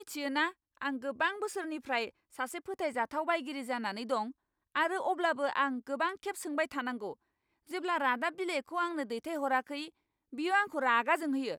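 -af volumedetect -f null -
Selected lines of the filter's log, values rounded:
mean_volume: -34.1 dB
max_volume: -14.9 dB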